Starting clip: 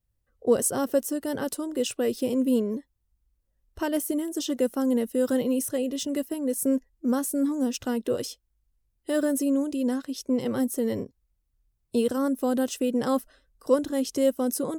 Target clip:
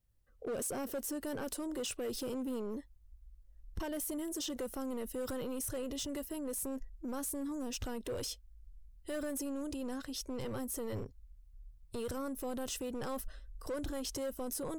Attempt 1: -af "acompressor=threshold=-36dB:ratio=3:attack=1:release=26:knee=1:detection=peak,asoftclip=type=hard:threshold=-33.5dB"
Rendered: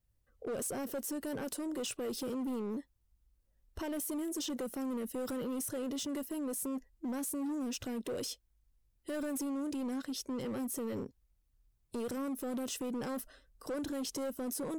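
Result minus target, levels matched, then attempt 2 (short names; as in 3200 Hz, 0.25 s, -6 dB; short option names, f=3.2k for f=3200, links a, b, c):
125 Hz band -5.0 dB
-af "acompressor=threshold=-36dB:ratio=3:attack=1:release=26:knee=1:detection=peak,asubboost=boost=11:cutoff=64,asoftclip=type=hard:threshold=-33.5dB"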